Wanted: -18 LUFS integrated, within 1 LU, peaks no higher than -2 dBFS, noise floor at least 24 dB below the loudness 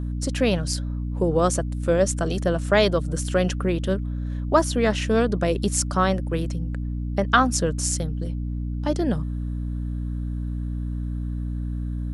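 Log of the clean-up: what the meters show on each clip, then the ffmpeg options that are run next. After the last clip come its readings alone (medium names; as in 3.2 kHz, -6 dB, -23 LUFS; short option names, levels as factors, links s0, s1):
hum 60 Hz; highest harmonic 300 Hz; hum level -25 dBFS; loudness -24.5 LUFS; peak level -3.0 dBFS; loudness target -18.0 LUFS
-> -af "bandreject=f=60:t=h:w=4,bandreject=f=120:t=h:w=4,bandreject=f=180:t=h:w=4,bandreject=f=240:t=h:w=4,bandreject=f=300:t=h:w=4"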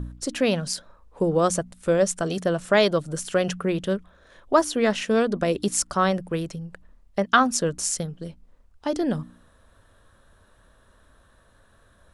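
hum not found; loudness -24.0 LUFS; peak level -3.0 dBFS; loudness target -18.0 LUFS
-> -af "volume=2,alimiter=limit=0.794:level=0:latency=1"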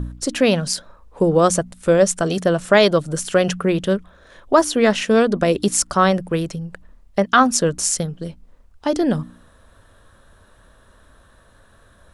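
loudness -18.5 LUFS; peak level -2.0 dBFS; noise floor -53 dBFS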